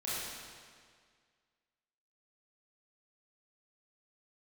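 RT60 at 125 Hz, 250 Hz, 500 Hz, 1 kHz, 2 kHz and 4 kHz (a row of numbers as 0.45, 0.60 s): 1.9, 1.9, 1.9, 1.9, 1.8, 1.7 s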